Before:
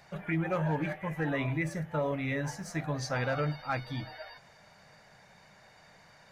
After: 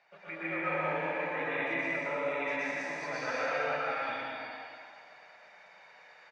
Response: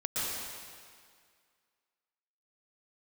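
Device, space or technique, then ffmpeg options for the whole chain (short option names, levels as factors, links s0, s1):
station announcement: -filter_complex "[0:a]highpass=480,lowpass=3700,equalizer=f=2400:t=o:w=0.29:g=6.5,aecho=1:1:119.5|195.3:0.794|0.794[s0];[1:a]atrim=start_sample=2205[s1];[s0][s1]afir=irnorm=-1:irlink=0,asettb=1/sr,asplit=3[s2][s3][s4];[s2]atrim=end=0.604[s5];[s3]atrim=start=0.6:end=2.25,asetpts=PTS-STARTPTS,afade=t=in:d=0.004:c=qsin,afade=t=out:st=1.646:d=0.004:c=qsin,lowpass=7600[s6];[s4]atrim=start=2.246[s7];[s5][s6]acrossfade=d=0.004:c1=hsin:c2=qsin[s8];[s8][s7]acrossfade=d=0.004:c1=qsin:c2=hsin,volume=0.422"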